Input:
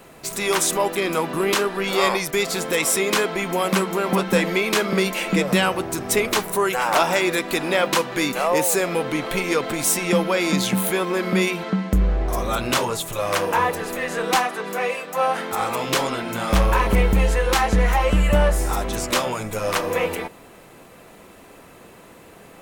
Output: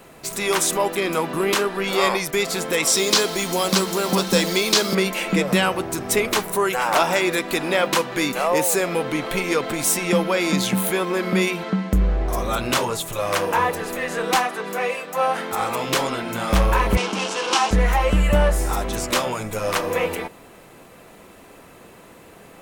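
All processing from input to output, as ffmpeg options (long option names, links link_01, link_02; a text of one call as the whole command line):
ffmpeg -i in.wav -filter_complex "[0:a]asettb=1/sr,asplit=3[link_01][link_02][link_03];[link_01]atrim=end=2.874[link_04];[link_02]atrim=start=2.87:end=4.95,asetpts=PTS-STARTPTS,afade=type=in:duration=0.004:curve=qsin,afade=type=out:start_time=2.076:duration=0.004:curve=qsin,acrossover=split=5900[link_05][link_06];[link_06]acompressor=threshold=-40dB:ratio=4:attack=1:release=60[link_07];[link_05][link_07]amix=inputs=2:normalize=0,highshelf=frequency=3300:width_type=q:width=1.5:gain=11,acrusher=bits=4:mix=0:aa=0.5[link_08];[link_03]atrim=start=4.946[link_09];[link_04][link_08]acrossfade=duration=0.004:curve1=hsin:curve2=qsin[link_10];[link_10][link_09]acrossfade=duration=0.004:curve1=qsin:curve2=hsin,asettb=1/sr,asplit=3[link_11][link_12][link_13];[link_11]atrim=end=16.974[link_14];[link_12]atrim=start=16.97:end=17.71,asetpts=PTS-STARTPTS,afade=type=in:duration=0.004:curve=qsin,afade=type=out:start_time=0.736:duration=0.004:curve=qsin,bandreject=frequency=60:width_type=h:width=6,bandreject=frequency=120:width_type=h:width=6,bandreject=frequency=180:width_type=h:width=6,bandreject=frequency=240:width_type=h:width=6,bandreject=frequency=300:width_type=h:width=6,bandreject=frequency=360:width_type=h:width=6,bandreject=frequency=420:width_type=h:width=6,bandreject=frequency=480:width_type=h:width=6,bandreject=frequency=540:width_type=h:width=6,bandreject=frequency=600:width_type=h:width=6,acrusher=bits=3:mix=0:aa=0.5,highpass=frequency=220:width=0.5412,highpass=frequency=220:width=1.3066,equalizer=frequency=520:width_type=q:width=4:gain=-6,equalizer=frequency=1000:width_type=q:width=4:gain=4,equalizer=frequency=1900:width_type=q:width=4:gain=-8,equalizer=frequency=2900:width_type=q:width=4:gain=6,equalizer=frequency=5600:width_type=q:width=4:gain=5,lowpass=frequency=8600:width=0.5412,lowpass=frequency=8600:width=1.3066[link_15];[link_13]atrim=start=17.706[link_16];[link_14][link_15]acrossfade=duration=0.004:curve1=hsin:curve2=qsin[link_17];[link_17][link_16]acrossfade=duration=0.004:curve1=qsin:curve2=hsin" out.wav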